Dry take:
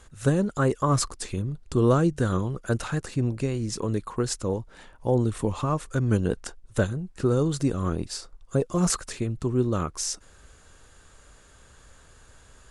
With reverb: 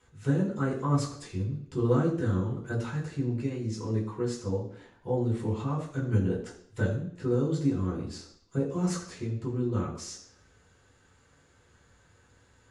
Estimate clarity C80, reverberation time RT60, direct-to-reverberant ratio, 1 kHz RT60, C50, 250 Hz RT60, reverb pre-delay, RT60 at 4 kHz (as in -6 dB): 9.5 dB, 0.65 s, -6.5 dB, 0.65 s, 7.0 dB, 0.65 s, 3 ms, 0.65 s